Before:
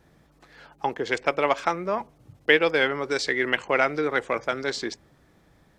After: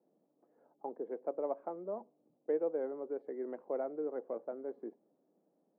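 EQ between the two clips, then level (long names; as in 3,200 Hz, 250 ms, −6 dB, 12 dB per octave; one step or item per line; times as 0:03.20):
Butterworth high-pass 200 Hz 36 dB per octave
transistor ladder low-pass 770 Hz, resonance 30%
−7.0 dB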